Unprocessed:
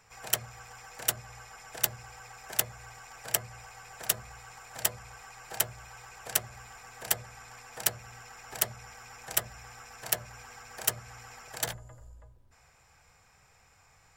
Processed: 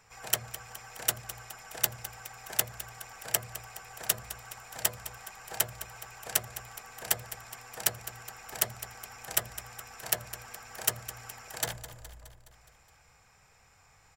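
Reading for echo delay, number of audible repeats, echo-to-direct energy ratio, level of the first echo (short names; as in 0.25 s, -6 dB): 0.209 s, 5, -12.0 dB, -14.0 dB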